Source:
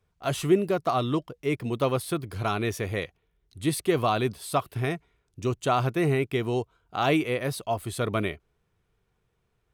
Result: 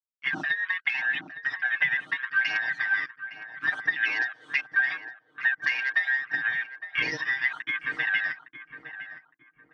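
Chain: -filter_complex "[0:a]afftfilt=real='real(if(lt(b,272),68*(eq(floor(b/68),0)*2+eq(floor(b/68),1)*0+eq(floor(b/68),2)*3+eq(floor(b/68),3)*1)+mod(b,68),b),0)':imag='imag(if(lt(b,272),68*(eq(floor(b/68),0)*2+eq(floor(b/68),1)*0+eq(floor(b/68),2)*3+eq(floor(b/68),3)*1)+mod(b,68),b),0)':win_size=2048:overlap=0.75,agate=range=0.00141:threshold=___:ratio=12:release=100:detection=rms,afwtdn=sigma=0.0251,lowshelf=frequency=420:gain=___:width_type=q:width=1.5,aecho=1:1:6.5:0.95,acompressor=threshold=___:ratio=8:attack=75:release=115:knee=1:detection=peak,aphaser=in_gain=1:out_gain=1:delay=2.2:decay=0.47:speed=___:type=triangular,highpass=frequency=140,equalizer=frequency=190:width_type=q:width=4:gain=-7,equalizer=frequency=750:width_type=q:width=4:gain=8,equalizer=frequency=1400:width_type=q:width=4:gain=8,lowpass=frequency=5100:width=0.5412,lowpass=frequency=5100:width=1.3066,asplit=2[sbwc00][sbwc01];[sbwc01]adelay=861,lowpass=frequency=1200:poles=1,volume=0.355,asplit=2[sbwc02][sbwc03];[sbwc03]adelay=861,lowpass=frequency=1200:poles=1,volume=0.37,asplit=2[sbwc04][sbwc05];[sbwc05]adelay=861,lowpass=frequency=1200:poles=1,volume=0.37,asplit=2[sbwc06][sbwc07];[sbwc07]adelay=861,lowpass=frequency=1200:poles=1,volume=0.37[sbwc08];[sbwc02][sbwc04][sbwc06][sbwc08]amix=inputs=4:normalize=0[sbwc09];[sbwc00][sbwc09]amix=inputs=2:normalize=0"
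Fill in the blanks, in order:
0.00398, 13, 0.0251, 0.77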